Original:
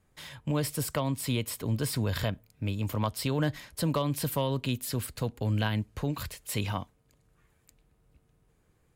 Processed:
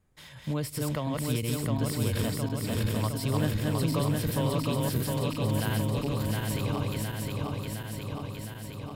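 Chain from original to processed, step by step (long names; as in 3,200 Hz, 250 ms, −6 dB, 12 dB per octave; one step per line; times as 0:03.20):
feedback delay that plays each chunk backwards 356 ms, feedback 83%, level −1.5 dB
low-shelf EQ 320 Hz +4 dB
level −4.5 dB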